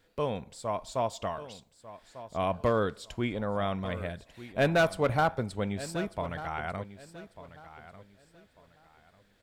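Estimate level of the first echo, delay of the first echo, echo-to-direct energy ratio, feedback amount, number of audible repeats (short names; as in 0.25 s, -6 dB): -15.0 dB, 1.195 s, -14.5 dB, 26%, 2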